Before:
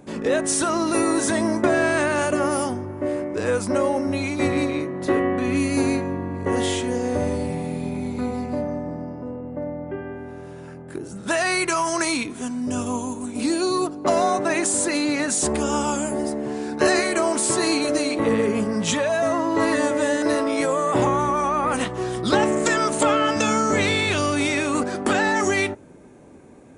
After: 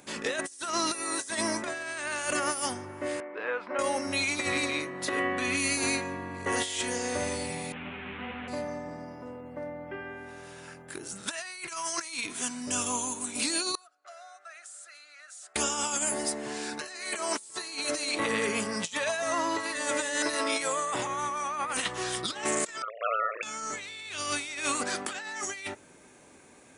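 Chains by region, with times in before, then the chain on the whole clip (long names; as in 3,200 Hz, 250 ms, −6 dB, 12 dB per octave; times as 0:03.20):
0:03.20–0:03.79: band-pass filter 410–3,200 Hz + high-frequency loss of the air 460 metres
0:07.72–0:08.48: linear delta modulator 16 kbit/s, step −27.5 dBFS + high-frequency loss of the air 190 metres + string-ensemble chorus
0:13.75–0:15.56: pair of resonant band-passes 960 Hz, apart 0.93 octaves + first difference
0:22.82–0:23.43: three sine waves on the formant tracks + amplitude modulation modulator 110 Hz, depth 80% + high-frequency loss of the air 480 metres
whole clip: tilt shelving filter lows −10 dB; compressor whose output falls as the input rises −24 dBFS, ratio −0.5; level −6.5 dB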